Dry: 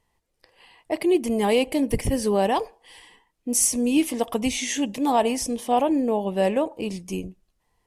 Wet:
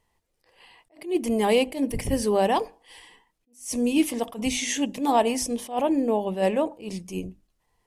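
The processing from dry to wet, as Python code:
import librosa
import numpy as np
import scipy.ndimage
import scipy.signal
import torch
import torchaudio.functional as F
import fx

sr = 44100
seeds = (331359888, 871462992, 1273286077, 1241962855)

y = fx.hum_notches(x, sr, base_hz=50, count=6)
y = fx.attack_slew(y, sr, db_per_s=170.0)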